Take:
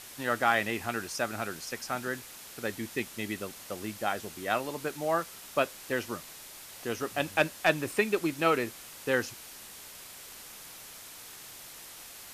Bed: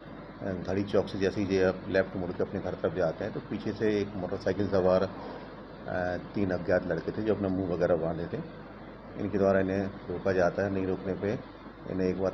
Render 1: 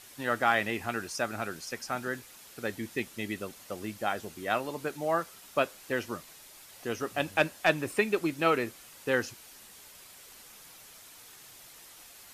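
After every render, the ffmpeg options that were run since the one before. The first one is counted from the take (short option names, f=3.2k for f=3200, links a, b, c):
-af "afftdn=nr=6:nf=-48"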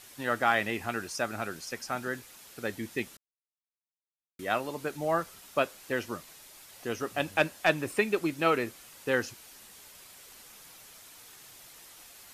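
-filter_complex "[0:a]asettb=1/sr,asplit=3[a][b][c];[a]atrim=end=4.934[d];[b]atrim=start=4.93:end=5.42,asetpts=PTS-STARTPTS,afade=t=in:d=0.004:c=qsin,afade=t=out:st=0.486:d=0.004:c=qsin,lowshelf=f=110:g=10[e];[c]atrim=start=5.416[f];[d][e]acrossfade=d=0.004:c1=hsin:c2=qsin[g];[g][f]acrossfade=d=0.004:c1=qsin:c2=hsin,asplit=3[h][i][j];[h]atrim=end=3.17,asetpts=PTS-STARTPTS,afade=t=out:st=3.166:d=0.004:c=hsin[k];[i]atrim=start=3.17:end=4.39,asetpts=PTS-STARTPTS,volume=0[l];[j]atrim=start=4.39,asetpts=PTS-STARTPTS,afade=t=in:d=0.004:c=hsin[m];[k][l][m]concat=n=3:v=0:a=1"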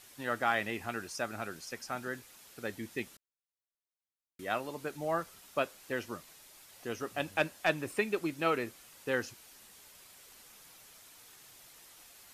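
-af "volume=-4.5dB"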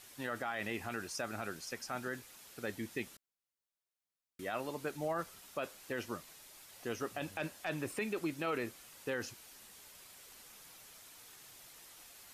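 -af "alimiter=level_in=3dB:limit=-24dB:level=0:latency=1:release=26,volume=-3dB"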